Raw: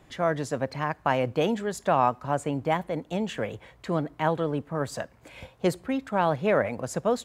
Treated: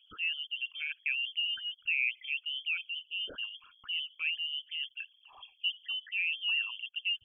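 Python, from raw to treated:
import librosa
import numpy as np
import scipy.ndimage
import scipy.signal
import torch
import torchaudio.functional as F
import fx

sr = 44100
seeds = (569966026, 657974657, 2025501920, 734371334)

y = fx.envelope_sharpen(x, sr, power=3.0)
y = fx.freq_invert(y, sr, carrier_hz=3300)
y = y * librosa.db_to_amplitude(-8.5)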